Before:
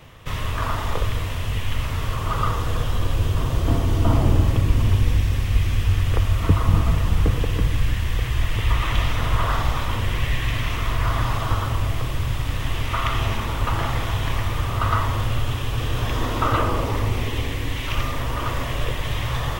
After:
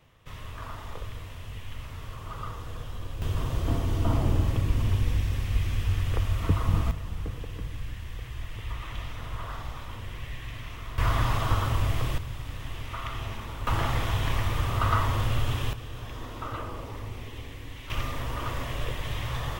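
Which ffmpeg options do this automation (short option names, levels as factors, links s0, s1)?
-af "asetnsamples=n=441:p=0,asendcmd='3.22 volume volume -7dB;6.91 volume volume -15dB;10.98 volume volume -3dB;12.18 volume volume -12dB;13.67 volume volume -3.5dB;15.73 volume volume -15dB;17.9 volume volume -7dB',volume=0.188"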